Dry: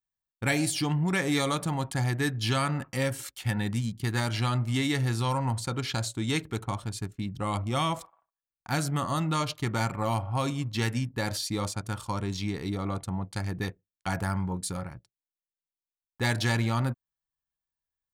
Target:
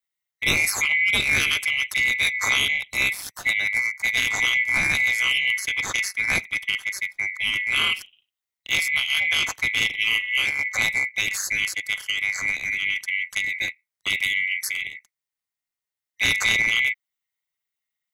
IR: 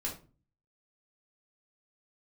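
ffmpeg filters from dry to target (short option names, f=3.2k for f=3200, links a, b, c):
-filter_complex "[0:a]afftfilt=real='real(if(lt(b,920),b+92*(1-2*mod(floor(b/92),2)),b),0)':imag='imag(if(lt(b,920),b+92*(1-2*mod(floor(b/92),2)),b),0)':win_size=2048:overlap=0.75,acrossover=split=150|660|3200[a][b][c][d];[b]aeval=exprs='max(val(0),0)':c=same[e];[a][e][c][d]amix=inputs=4:normalize=0,aeval=exprs='val(0)*sin(2*PI*100*n/s)':c=same,volume=8.5dB"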